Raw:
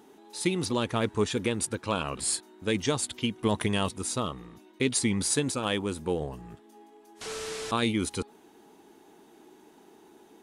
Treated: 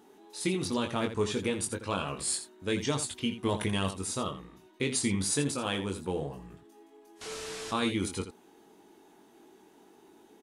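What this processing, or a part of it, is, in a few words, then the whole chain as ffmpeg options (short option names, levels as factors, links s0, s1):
slapback doubling: -filter_complex "[0:a]asplit=3[s0][s1][s2];[s1]adelay=21,volume=0.562[s3];[s2]adelay=83,volume=0.299[s4];[s0][s3][s4]amix=inputs=3:normalize=0,volume=0.631"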